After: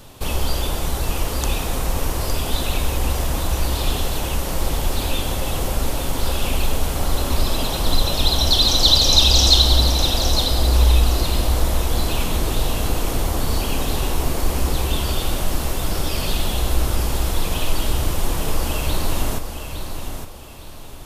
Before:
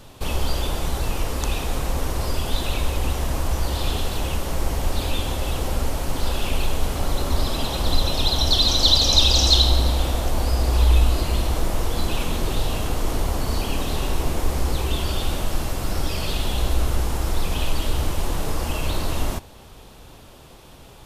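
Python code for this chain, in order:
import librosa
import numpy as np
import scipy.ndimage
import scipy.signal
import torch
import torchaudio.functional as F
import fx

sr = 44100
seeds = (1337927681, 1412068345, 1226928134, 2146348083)

y = fx.high_shelf(x, sr, hz=9200.0, db=7.0)
y = fx.echo_feedback(y, sr, ms=861, feedback_pct=31, wet_db=-8)
y = F.gain(torch.from_numpy(y), 1.5).numpy()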